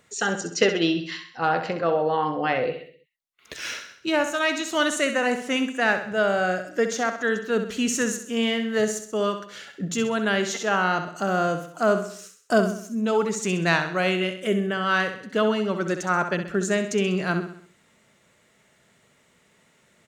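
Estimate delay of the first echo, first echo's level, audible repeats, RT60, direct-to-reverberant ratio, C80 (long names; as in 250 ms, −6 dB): 65 ms, −9.0 dB, 4, no reverb audible, no reverb audible, no reverb audible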